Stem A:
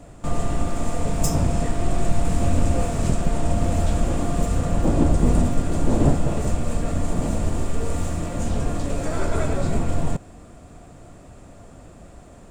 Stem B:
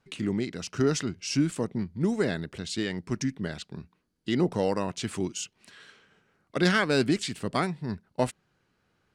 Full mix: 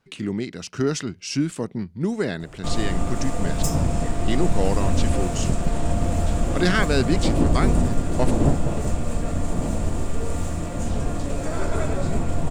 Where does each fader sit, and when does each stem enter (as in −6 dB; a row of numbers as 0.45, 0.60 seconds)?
−1.0, +2.0 decibels; 2.40, 0.00 seconds